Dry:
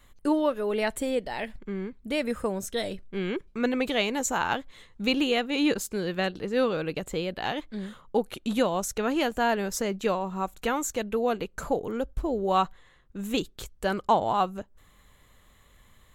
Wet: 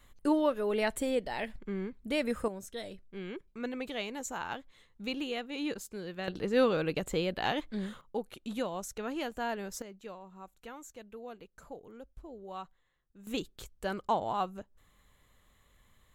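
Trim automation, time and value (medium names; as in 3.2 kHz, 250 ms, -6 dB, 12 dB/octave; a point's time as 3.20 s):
-3 dB
from 2.48 s -11 dB
from 6.28 s -1 dB
from 8.01 s -10 dB
from 9.82 s -19 dB
from 13.27 s -7.5 dB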